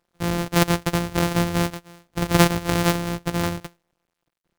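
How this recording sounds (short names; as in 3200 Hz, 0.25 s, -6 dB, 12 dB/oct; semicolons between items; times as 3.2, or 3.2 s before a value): a buzz of ramps at a fixed pitch in blocks of 256 samples; tremolo saw down 0.9 Hz, depth 40%; a quantiser's noise floor 12-bit, dither none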